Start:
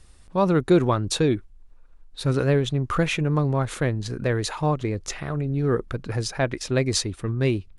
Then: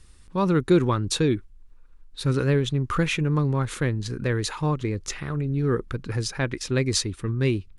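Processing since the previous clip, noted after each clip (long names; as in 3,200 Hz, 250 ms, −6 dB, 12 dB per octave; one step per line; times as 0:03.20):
parametric band 670 Hz −10.5 dB 0.55 octaves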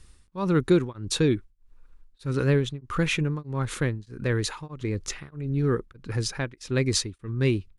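tremolo along a rectified sine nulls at 1.6 Hz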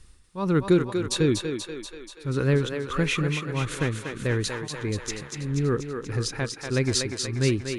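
feedback echo with a high-pass in the loop 241 ms, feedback 64%, high-pass 320 Hz, level −5 dB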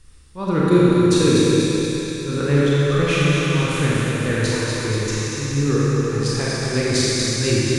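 four-comb reverb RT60 3.3 s, combs from 28 ms, DRR −7 dB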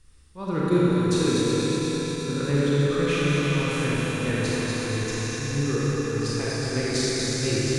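feedback delay that plays each chunk backwards 180 ms, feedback 82%, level −8 dB
level −7 dB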